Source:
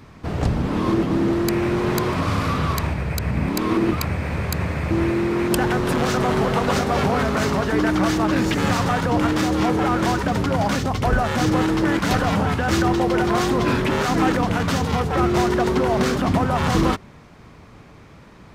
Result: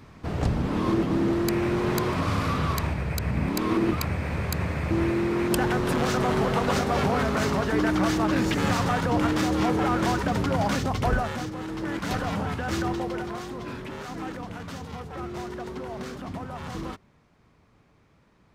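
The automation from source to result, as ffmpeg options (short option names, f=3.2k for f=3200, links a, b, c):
-af "volume=4.5dB,afade=t=out:st=11.08:d=0.44:silence=0.223872,afade=t=in:st=11.52:d=0.6:silence=0.375837,afade=t=out:st=12.87:d=0.55:silence=0.421697"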